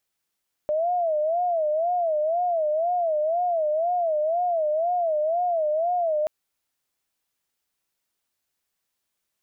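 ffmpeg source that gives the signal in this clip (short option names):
-f lavfi -i "aevalsrc='0.0944*sin(2*PI*(660*t-59/(2*PI*2)*sin(2*PI*2*t)))':d=5.58:s=44100"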